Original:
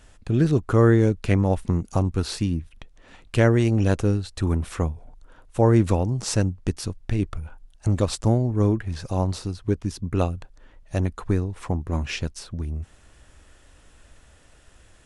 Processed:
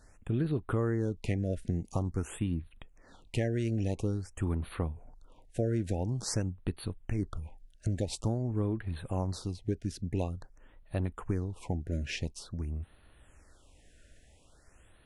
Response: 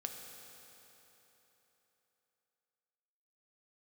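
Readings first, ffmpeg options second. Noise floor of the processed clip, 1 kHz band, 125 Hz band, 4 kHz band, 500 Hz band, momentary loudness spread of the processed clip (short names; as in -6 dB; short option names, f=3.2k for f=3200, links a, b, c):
-61 dBFS, -13.0 dB, -10.5 dB, -9.0 dB, -11.5 dB, 8 LU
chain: -filter_complex "[0:a]acompressor=threshold=-20dB:ratio=6,asplit=2[a][b];[b]equalizer=f=290:w=0.31:g=7.5[c];[1:a]atrim=start_sample=2205,atrim=end_sample=3528,asetrate=74970,aresample=44100[d];[c][d]afir=irnorm=-1:irlink=0,volume=-14.5dB[e];[a][e]amix=inputs=2:normalize=0,afftfilt=real='re*(1-between(b*sr/1024,960*pow(6500/960,0.5+0.5*sin(2*PI*0.48*pts/sr))/1.41,960*pow(6500/960,0.5+0.5*sin(2*PI*0.48*pts/sr))*1.41))':imag='im*(1-between(b*sr/1024,960*pow(6500/960,0.5+0.5*sin(2*PI*0.48*pts/sr))/1.41,960*pow(6500/960,0.5+0.5*sin(2*PI*0.48*pts/sr))*1.41))':win_size=1024:overlap=0.75,volume=-7.5dB"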